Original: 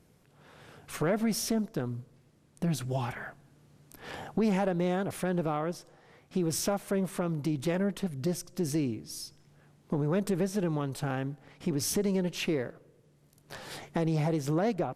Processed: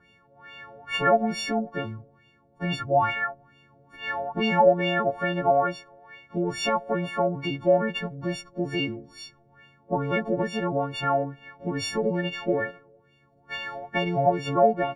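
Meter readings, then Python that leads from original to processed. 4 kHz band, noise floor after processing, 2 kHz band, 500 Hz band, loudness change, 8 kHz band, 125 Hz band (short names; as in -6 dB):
+7.0 dB, -61 dBFS, +11.5 dB, +8.0 dB, +5.5 dB, -8.0 dB, -0.5 dB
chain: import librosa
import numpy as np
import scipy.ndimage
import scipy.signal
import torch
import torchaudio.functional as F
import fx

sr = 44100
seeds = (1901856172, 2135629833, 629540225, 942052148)

y = fx.freq_snap(x, sr, grid_st=4)
y = fx.dynamic_eq(y, sr, hz=650.0, q=1.8, threshold_db=-44.0, ratio=4.0, max_db=4)
y = fx.filter_lfo_lowpass(y, sr, shape='sine', hz=2.3, low_hz=600.0, high_hz=2900.0, q=4.8)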